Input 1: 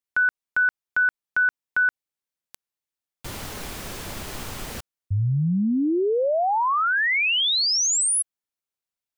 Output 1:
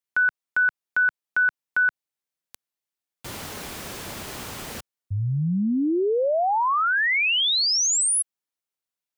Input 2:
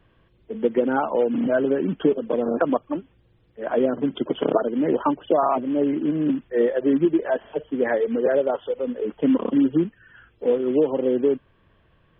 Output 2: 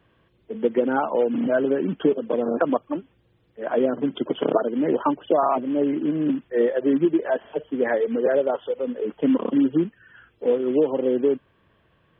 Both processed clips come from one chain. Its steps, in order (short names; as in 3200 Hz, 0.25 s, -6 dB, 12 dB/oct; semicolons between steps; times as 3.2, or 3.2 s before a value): HPF 110 Hz 6 dB/oct